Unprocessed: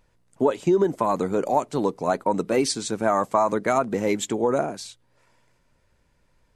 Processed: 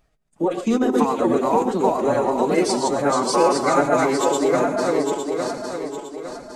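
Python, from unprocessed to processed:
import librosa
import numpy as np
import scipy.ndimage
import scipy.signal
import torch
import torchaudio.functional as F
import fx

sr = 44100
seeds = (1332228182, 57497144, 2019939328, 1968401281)

y = fx.reverse_delay_fb(x, sr, ms=429, feedback_pct=63, wet_db=0)
y = fx.rev_gated(y, sr, seeds[0], gate_ms=150, shape='rising', drr_db=9.0)
y = fx.pitch_keep_formants(y, sr, semitones=4.5)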